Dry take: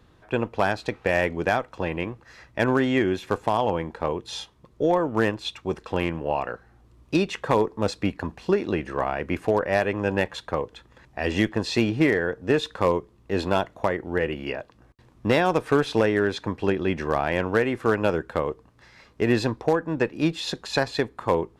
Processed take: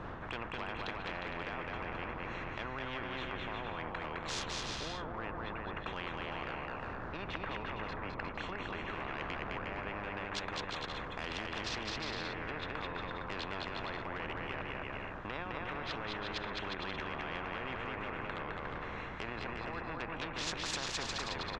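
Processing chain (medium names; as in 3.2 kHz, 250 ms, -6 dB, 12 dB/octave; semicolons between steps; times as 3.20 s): local Wiener filter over 9 samples; wind noise 87 Hz -25 dBFS; low-pass that closes with the level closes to 1.2 kHz, closed at -17 dBFS; peaking EQ 1.1 kHz +11.5 dB 0.8 oct; peak limiter -20.5 dBFS, peak gain reduction 20 dB; distance through air 61 m; bouncing-ball echo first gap 210 ms, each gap 0.7×, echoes 5; spectrum-flattening compressor 4:1; trim -3.5 dB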